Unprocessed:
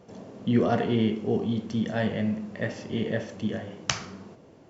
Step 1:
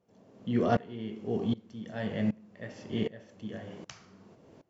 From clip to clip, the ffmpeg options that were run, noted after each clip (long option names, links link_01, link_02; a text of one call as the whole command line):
ffmpeg -i in.wav -af "aeval=exprs='val(0)*pow(10,-22*if(lt(mod(-1.3*n/s,1),2*abs(-1.3)/1000),1-mod(-1.3*n/s,1)/(2*abs(-1.3)/1000),(mod(-1.3*n/s,1)-2*abs(-1.3)/1000)/(1-2*abs(-1.3)/1000))/20)':channel_layout=same" out.wav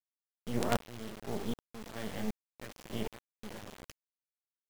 ffmpeg -i in.wav -af "acrusher=bits=4:dc=4:mix=0:aa=0.000001,volume=-2.5dB" out.wav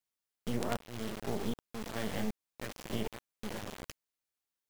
ffmpeg -i in.wav -af "acompressor=threshold=-34dB:ratio=6,volume=5dB" out.wav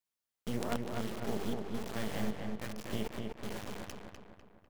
ffmpeg -i in.wav -filter_complex "[0:a]asplit=2[link_01][link_02];[link_02]adelay=249,lowpass=frequency=2800:poles=1,volume=-3.5dB,asplit=2[link_03][link_04];[link_04]adelay=249,lowpass=frequency=2800:poles=1,volume=0.51,asplit=2[link_05][link_06];[link_06]adelay=249,lowpass=frequency=2800:poles=1,volume=0.51,asplit=2[link_07][link_08];[link_08]adelay=249,lowpass=frequency=2800:poles=1,volume=0.51,asplit=2[link_09][link_10];[link_10]adelay=249,lowpass=frequency=2800:poles=1,volume=0.51,asplit=2[link_11][link_12];[link_12]adelay=249,lowpass=frequency=2800:poles=1,volume=0.51,asplit=2[link_13][link_14];[link_14]adelay=249,lowpass=frequency=2800:poles=1,volume=0.51[link_15];[link_01][link_03][link_05][link_07][link_09][link_11][link_13][link_15]amix=inputs=8:normalize=0,volume=-1.5dB" out.wav